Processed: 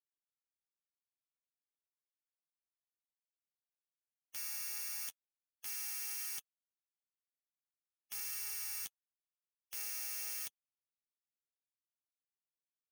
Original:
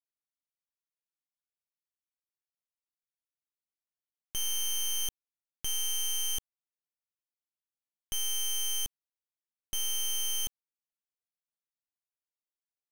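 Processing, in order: flange 0.48 Hz, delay 6.3 ms, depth 5.7 ms, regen +17%; spectral gate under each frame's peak -30 dB weak; amplifier tone stack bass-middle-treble 5-5-5; trim +12.5 dB

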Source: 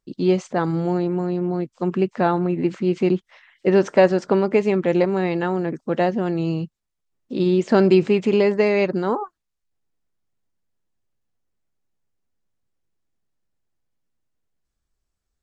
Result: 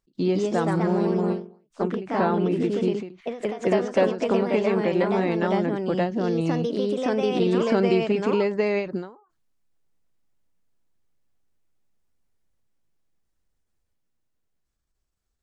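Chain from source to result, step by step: compression 2:1, threshold -23 dBFS, peak gain reduction 7.5 dB; ever faster or slower copies 182 ms, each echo +2 st, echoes 2; endings held to a fixed fall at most 130 dB/s

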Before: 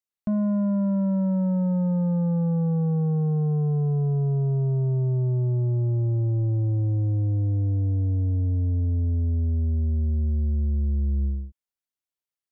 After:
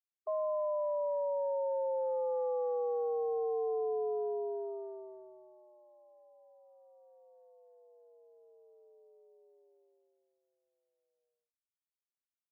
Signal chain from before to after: brick-wall FIR band-pass 390–1200 Hz; upward expansion 2.5:1, over -56 dBFS; trim +3.5 dB

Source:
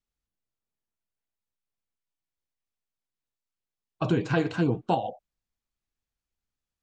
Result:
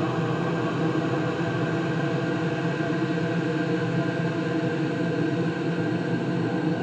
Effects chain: recorder AGC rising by 22 dB/s; Paulstretch 15×, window 1.00 s, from 4.17 s

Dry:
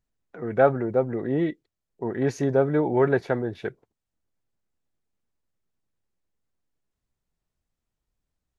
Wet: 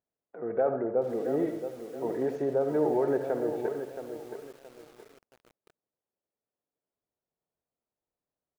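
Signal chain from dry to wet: peak limiter -15.5 dBFS, peak gain reduction 9.5 dB; band-pass filter 570 Hz, Q 1.2; feedback delay 230 ms, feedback 33%, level -19 dB; on a send at -7 dB: reverberation RT60 0.40 s, pre-delay 58 ms; on the sum: bit-crushed delay 673 ms, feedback 35%, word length 8-bit, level -9 dB

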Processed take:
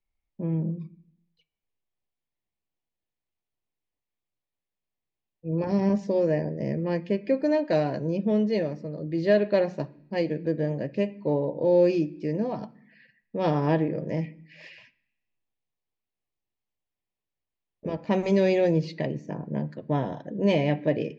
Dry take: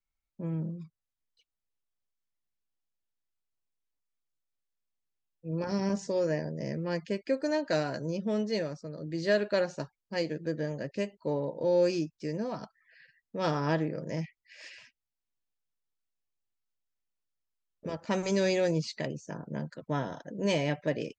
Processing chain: low-pass 2.6 kHz 12 dB/octave; peaking EQ 1.4 kHz -11.5 dB 0.57 oct; on a send: reverberation RT60 0.70 s, pre-delay 3 ms, DRR 12 dB; on the sum: trim +6 dB

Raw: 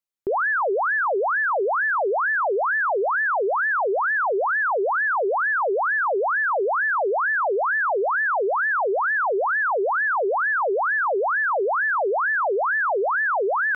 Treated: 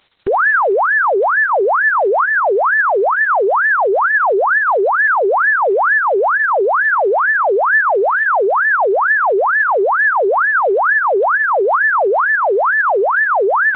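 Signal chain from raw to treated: tone controls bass 0 dB, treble +7 dB; upward compressor, threshold -33 dBFS; trim +8.5 dB; Opus 6 kbps 48 kHz

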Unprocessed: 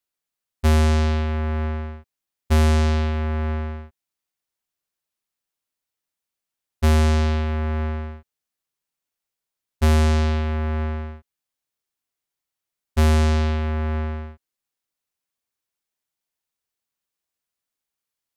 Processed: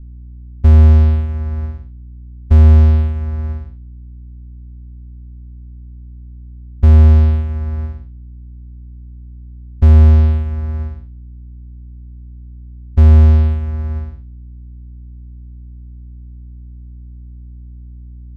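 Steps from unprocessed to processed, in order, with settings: Chebyshev shaper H 5 -42 dB, 7 -16 dB, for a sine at -12 dBFS; hum 60 Hz, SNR 20 dB; RIAA curve playback; trim -5 dB

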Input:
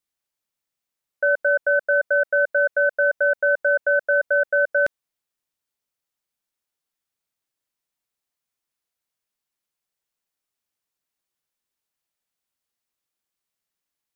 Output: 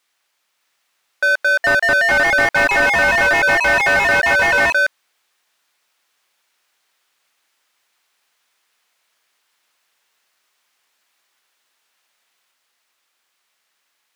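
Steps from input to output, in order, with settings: ever faster or slower copies 610 ms, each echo +3 st, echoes 3; tilt shelf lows -6 dB; overdrive pedal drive 29 dB, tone 1.4 kHz, clips at -6 dBFS

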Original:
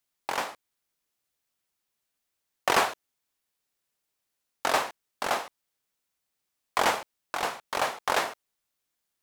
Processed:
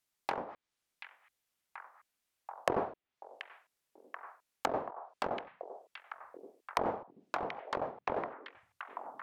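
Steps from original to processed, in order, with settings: low-pass that closes with the level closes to 540 Hz, closed at -27 dBFS; repeats whose band climbs or falls 733 ms, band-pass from 2.5 kHz, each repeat -0.7 oct, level -3.5 dB; trim -2 dB

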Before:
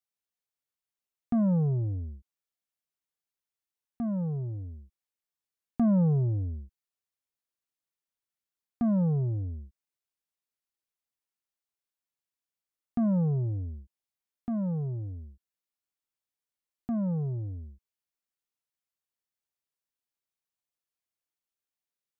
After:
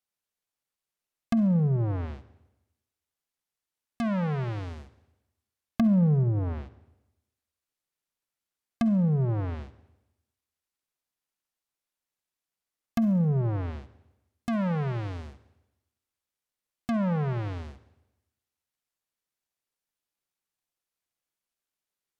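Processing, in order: square wave that keeps the level; low-pass that closes with the level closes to 340 Hz, closed at -23 dBFS; reverberation RT60 0.95 s, pre-delay 45 ms, DRR 14.5 dB; trim +1.5 dB

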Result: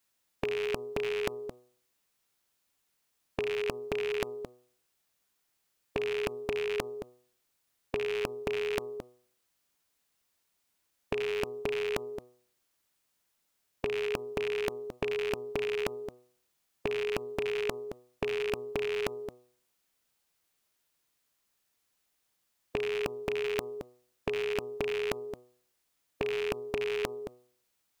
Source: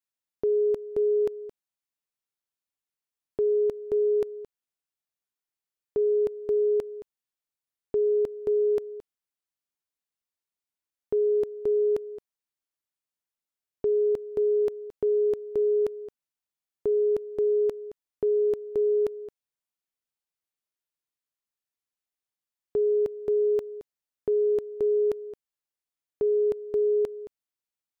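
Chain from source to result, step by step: rattle on loud lows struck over -42 dBFS, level -36 dBFS; de-hum 123.6 Hz, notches 10; spectrum-flattening compressor 2:1; trim +4 dB

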